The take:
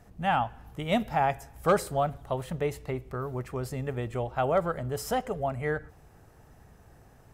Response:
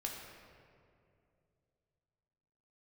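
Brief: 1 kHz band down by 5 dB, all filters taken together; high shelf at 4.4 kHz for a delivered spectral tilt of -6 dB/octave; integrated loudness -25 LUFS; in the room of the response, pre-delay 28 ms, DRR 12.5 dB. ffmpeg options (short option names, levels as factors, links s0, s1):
-filter_complex "[0:a]equalizer=f=1000:t=o:g=-7,highshelf=f=4400:g=-8,asplit=2[s0][s1];[1:a]atrim=start_sample=2205,adelay=28[s2];[s1][s2]afir=irnorm=-1:irlink=0,volume=0.237[s3];[s0][s3]amix=inputs=2:normalize=0,volume=2.37"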